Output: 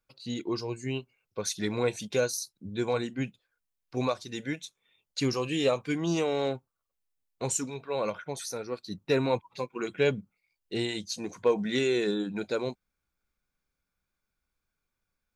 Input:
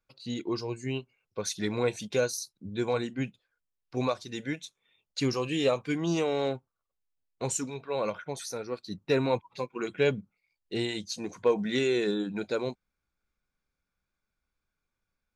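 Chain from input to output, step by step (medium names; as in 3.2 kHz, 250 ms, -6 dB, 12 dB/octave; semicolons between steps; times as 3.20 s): treble shelf 8.5 kHz +4.5 dB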